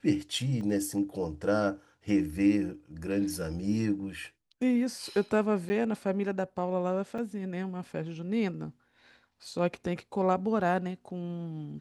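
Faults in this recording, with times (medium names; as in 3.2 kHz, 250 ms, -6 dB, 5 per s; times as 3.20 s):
0.61 s: dropout 2.1 ms
5.69–5.70 s: dropout 10 ms
7.18 s: dropout 4.9 ms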